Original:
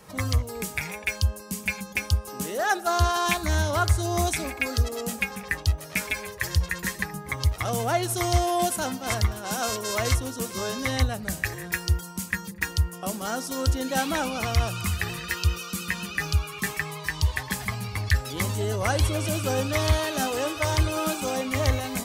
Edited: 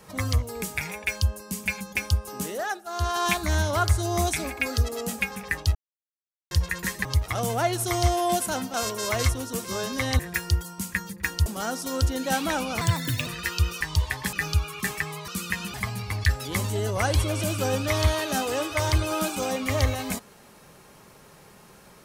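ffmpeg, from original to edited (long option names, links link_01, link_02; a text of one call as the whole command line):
ffmpeg -i in.wav -filter_complex "[0:a]asplit=15[link_01][link_02][link_03][link_04][link_05][link_06][link_07][link_08][link_09][link_10][link_11][link_12][link_13][link_14][link_15];[link_01]atrim=end=2.83,asetpts=PTS-STARTPTS,afade=type=out:start_time=2.45:duration=0.38:silence=0.211349[link_16];[link_02]atrim=start=2.83:end=2.86,asetpts=PTS-STARTPTS,volume=-13.5dB[link_17];[link_03]atrim=start=2.86:end=5.75,asetpts=PTS-STARTPTS,afade=type=in:duration=0.38:silence=0.211349,afade=type=out:start_time=2.886:duration=0.004:curve=hsin[link_18];[link_04]atrim=start=5.75:end=6.51,asetpts=PTS-STARTPTS,volume=0[link_19];[link_05]atrim=start=6.51:end=7.052,asetpts=PTS-STARTPTS,afade=type=in:duration=0.004:curve=hsin[link_20];[link_06]atrim=start=7.348:end=9.042[link_21];[link_07]atrim=start=9.598:end=11.052[link_22];[link_08]atrim=start=11.568:end=12.842[link_23];[link_09]atrim=start=13.108:end=14.464[link_24];[link_10]atrim=start=14.46:end=15.12,asetpts=PTS-STARTPTS,asetrate=63504,aresample=44100,atrim=end_sample=20212,asetpts=PTS-STARTPTS[link_25];[link_11]atrim=start=15.116:end=15.662[link_26];[link_12]atrim=start=17.068:end=17.592[link_27];[link_13]atrim=start=16.118:end=17.072[link_28];[link_14]atrim=start=15.658:end=16.122[link_29];[link_15]atrim=start=17.588[link_30];[link_16][link_17][link_18][link_19][link_20]concat=n=5:v=0:a=1[link_31];[link_31][link_21]acrossfade=duration=0.004:curve1=hsin:curve2=hsin[link_32];[link_32][link_22]acrossfade=duration=0.004:curve1=hsin:curve2=hsin[link_33];[link_33][link_23]acrossfade=duration=0.004:curve1=hsin:curve2=hsin[link_34];[link_34][link_24]acrossfade=duration=0.004:curve1=hsin:curve2=hsin[link_35];[link_35][link_25]acrossfade=duration=0.004:curve1=hsin:curve2=hsin[link_36];[link_36][link_26]acrossfade=duration=0.004:curve1=hsin:curve2=hsin[link_37];[link_37][link_27]acrossfade=duration=0.004:curve1=hsin:curve2=hsin[link_38];[link_38][link_28]acrossfade=duration=0.004:curve1=hsin:curve2=hsin[link_39];[link_39][link_29]acrossfade=duration=0.004:curve1=hsin:curve2=hsin[link_40];[link_40][link_30]acrossfade=duration=0.004:curve1=hsin:curve2=hsin" out.wav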